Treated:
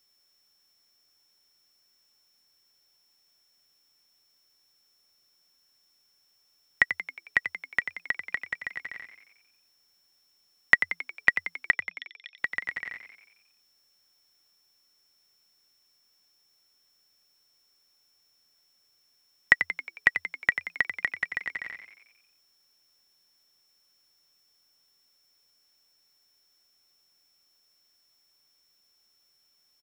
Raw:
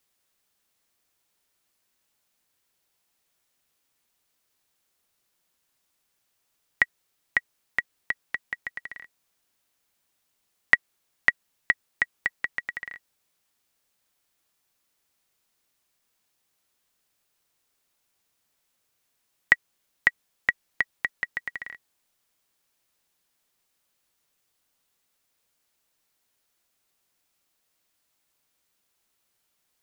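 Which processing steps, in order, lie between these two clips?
0:11.71–0:12.38: four-pole ladder band-pass 3,500 Hz, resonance 90%
steady tone 5,400 Hz −67 dBFS
echo with shifted repeats 90 ms, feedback 56%, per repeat +83 Hz, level −9.5 dB

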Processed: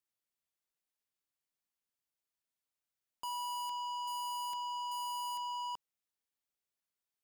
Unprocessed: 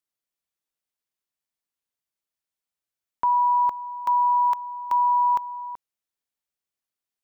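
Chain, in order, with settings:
dynamic equaliser 340 Hz, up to −4 dB, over −41 dBFS, Q 0.95
leveller curve on the samples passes 2
soft clipping −38.5 dBFS, distortion −6 dB

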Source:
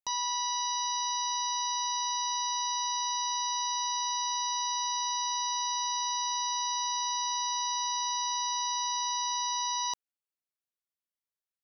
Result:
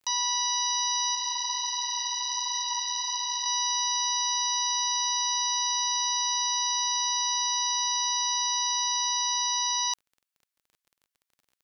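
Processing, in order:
high-pass filter 1,200 Hz 12 dB per octave
0:01.15–0:03.46: multi-voice chorus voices 6, 1.3 Hz, delay 15 ms, depth 3 ms
surface crackle 22 per second −54 dBFS
level +6 dB

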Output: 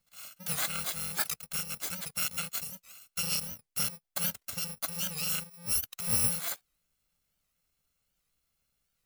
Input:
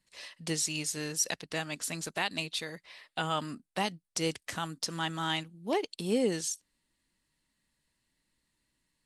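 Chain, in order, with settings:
samples in bit-reversed order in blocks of 128 samples
wow of a warped record 78 rpm, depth 160 cents

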